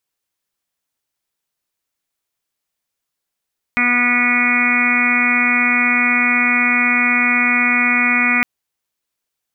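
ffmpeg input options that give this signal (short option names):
-f lavfi -i "aevalsrc='0.0944*sin(2*PI*244*t)+0.0133*sin(2*PI*488*t)+0.0335*sin(2*PI*732*t)+0.0237*sin(2*PI*976*t)+0.0668*sin(2*PI*1220*t)+0.0668*sin(2*PI*1464*t)+0.0266*sin(2*PI*1708*t)+0.119*sin(2*PI*1952*t)+0.133*sin(2*PI*2196*t)+0.119*sin(2*PI*2440*t)':d=4.66:s=44100"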